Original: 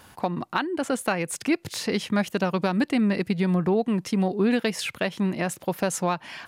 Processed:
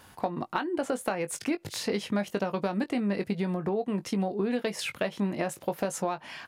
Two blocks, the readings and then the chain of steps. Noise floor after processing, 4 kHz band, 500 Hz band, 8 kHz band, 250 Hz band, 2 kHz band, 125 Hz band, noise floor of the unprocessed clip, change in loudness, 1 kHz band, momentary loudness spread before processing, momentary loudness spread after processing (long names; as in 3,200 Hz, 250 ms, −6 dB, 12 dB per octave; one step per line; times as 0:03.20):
−55 dBFS, −5.5 dB, −3.5 dB, −5.0 dB, −6.0 dB, −6.5 dB, −7.0 dB, −53 dBFS, −5.5 dB, −4.5 dB, 5 LU, 3 LU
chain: dynamic equaliser 590 Hz, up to +6 dB, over −36 dBFS, Q 0.79
downward compressor, threshold −22 dBFS, peak gain reduction 8.5 dB
double-tracking delay 20 ms −10 dB
level −3.5 dB